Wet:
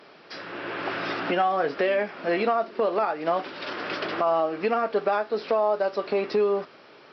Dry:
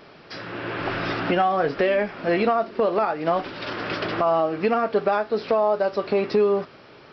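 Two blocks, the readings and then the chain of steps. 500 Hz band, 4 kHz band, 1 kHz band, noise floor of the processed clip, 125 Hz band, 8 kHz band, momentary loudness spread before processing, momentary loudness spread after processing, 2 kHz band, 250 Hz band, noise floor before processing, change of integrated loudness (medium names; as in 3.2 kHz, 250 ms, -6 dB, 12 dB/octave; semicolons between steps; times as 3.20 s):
-3.0 dB, -2.0 dB, -2.0 dB, -51 dBFS, -9.0 dB, no reading, 10 LU, 9 LU, -2.0 dB, -5.0 dB, -48 dBFS, -3.0 dB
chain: Bessel high-pass 270 Hz, order 2; trim -1.5 dB; MP3 64 kbps 48 kHz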